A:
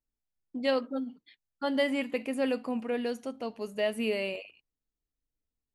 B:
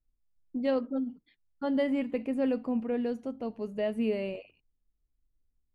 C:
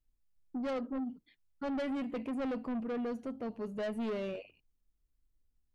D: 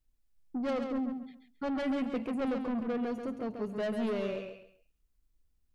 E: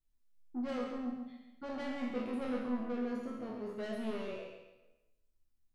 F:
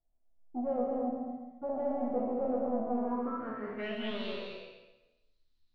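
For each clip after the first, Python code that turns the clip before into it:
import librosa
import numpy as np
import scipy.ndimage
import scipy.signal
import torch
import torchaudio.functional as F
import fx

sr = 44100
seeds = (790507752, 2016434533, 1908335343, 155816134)

y1 = fx.tilt_eq(x, sr, slope=-3.5)
y1 = y1 * librosa.db_to_amplitude(-4.0)
y2 = 10.0 ** (-32.5 / 20.0) * np.tanh(y1 / 10.0 ** (-32.5 / 20.0))
y3 = fx.echo_feedback(y2, sr, ms=136, feedback_pct=26, wet_db=-6.5)
y3 = y3 * librosa.db_to_amplitude(2.5)
y4 = fx.spec_trails(y3, sr, decay_s=1.0)
y4 = fx.resonator_bank(y4, sr, root=40, chord='sus4', decay_s=0.25)
y4 = y4 * librosa.db_to_amplitude(3.5)
y5 = fx.filter_sweep_lowpass(y4, sr, from_hz=690.0, to_hz=4100.0, start_s=2.85, end_s=4.28, q=6.2)
y5 = y5 + 10.0 ** (-4.5 / 20.0) * np.pad(y5, (int(211 * sr / 1000.0), 0))[:len(y5)]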